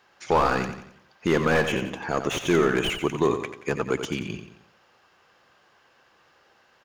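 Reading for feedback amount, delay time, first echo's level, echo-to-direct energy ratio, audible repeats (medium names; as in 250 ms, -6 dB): 42%, 89 ms, -9.0 dB, -8.0 dB, 4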